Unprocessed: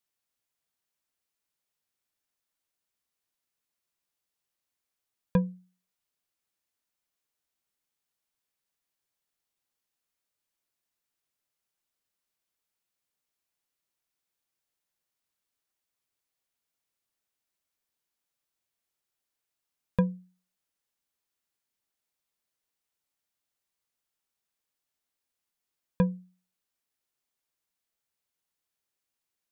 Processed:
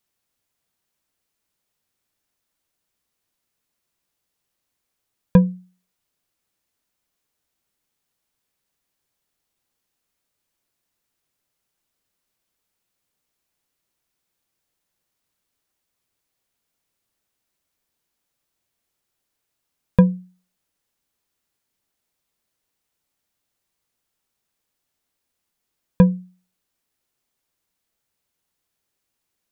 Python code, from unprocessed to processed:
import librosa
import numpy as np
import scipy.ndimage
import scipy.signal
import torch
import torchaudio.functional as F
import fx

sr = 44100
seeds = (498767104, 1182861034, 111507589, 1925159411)

y = fx.low_shelf(x, sr, hz=490.0, db=5.5)
y = y * librosa.db_to_amplitude(7.0)